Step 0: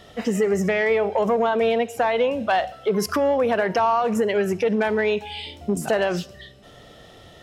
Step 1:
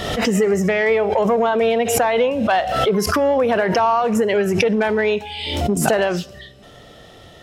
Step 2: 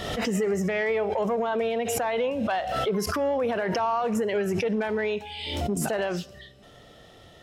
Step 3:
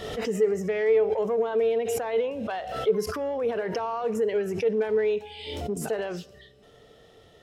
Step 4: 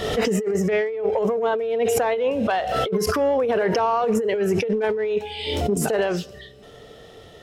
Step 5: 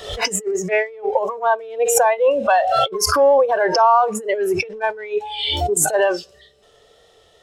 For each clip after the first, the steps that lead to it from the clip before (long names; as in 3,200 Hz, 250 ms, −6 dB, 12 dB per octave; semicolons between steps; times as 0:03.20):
background raised ahead of every attack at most 41 dB per second; level +3 dB
brickwall limiter −10.5 dBFS, peak gain reduction 8 dB; level −7.5 dB
parametric band 440 Hz +12 dB 0.23 octaves; level −5.5 dB
compressor whose output falls as the input rises −28 dBFS, ratio −1; level +7 dB
noise reduction from a noise print of the clip's start 15 dB; octave-band graphic EQ 125/250/500/1,000/4,000/8,000 Hz −6/−9/+3/+3/+4/+8 dB; tape wow and flutter 26 cents; level +5.5 dB